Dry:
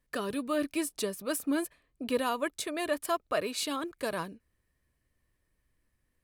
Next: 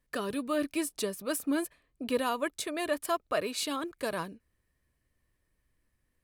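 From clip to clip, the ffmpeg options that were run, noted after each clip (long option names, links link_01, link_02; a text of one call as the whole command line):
ffmpeg -i in.wav -af anull out.wav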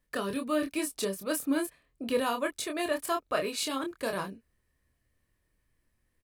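ffmpeg -i in.wav -filter_complex "[0:a]asplit=2[link_01][link_02];[link_02]adelay=26,volume=-5dB[link_03];[link_01][link_03]amix=inputs=2:normalize=0" out.wav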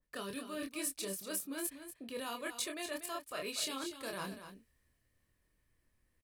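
ffmpeg -i in.wav -af "areverse,acompressor=threshold=-38dB:ratio=6,areverse,aecho=1:1:240:0.299,adynamicequalizer=threshold=0.00158:dfrequency=1900:dqfactor=0.7:tfrequency=1900:tqfactor=0.7:attack=5:release=100:ratio=0.375:range=3.5:mode=boostabove:tftype=highshelf,volume=-2dB" out.wav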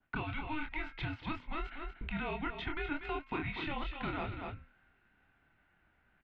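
ffmpeg -i in.wav -filter_complex "[0:a]bandreject=frequency=274.2:width_type=h:width=4,bandreject=frequency=548.4:width_type=h:width=4,bandreject=frequency=822.6:width_type=h:width=4,bandreject=frequency=1096.8:width_type=h:width=4,bandreject=frequency=1371:width_type=h:width=4,bandreject=frequency=1645.2:width_type=h:width=4,bandreject=frequency=1919.4:width_type=h:width=4,bandreject=frequency=2193.6:width_type=h:width=4,bandreject=frequency=2467.8:width_type=h:width=4,bandreject=frequency=2742:width_type=h:width=4,bandreject=frequency=3016.2:width_type=h:width=4,bandreject=frequency=3290.4:width_type=h:width=4,highpass=frequency=220:width_type=q:width=0.5412,highpass=frequency=220:width_type=q:width=1.307,lowpass=frequency=3200:width_type=q:width=0.5176,lowpass=frequency=3200:width_type=q:width=0.7071,lowpass=frequency=3200:width_type=q:width=1.932,afreqshift=-300,acrossover=split=510|1600[link_01][link_02][link_03];[link_01]acompressor=threshold=-52dB:ratio=4[link_04];[link_02]acompressor=threshold=-57dB:ratio=4[link_05];[link_03]acompressor=threshold=-58dB:ratio=4[link_06];[link_04][link_05][link_06]amix=inputs=3:normalize=0,volume=13.5dB" out.wav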